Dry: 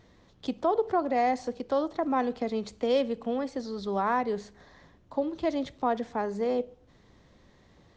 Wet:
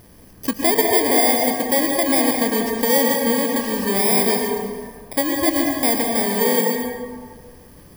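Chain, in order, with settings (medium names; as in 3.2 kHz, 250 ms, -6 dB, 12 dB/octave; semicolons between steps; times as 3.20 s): bit-reversed sample order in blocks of 32 samples; in parallel at -1 dB: compression, threshold -33 dBFS, peak gain reduction 12 dB; on the sum: plate-style reverb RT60 1.8 s, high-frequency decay 0.5×, pre-delay 100 ms, DRR 1 dB; trim +5.5 dB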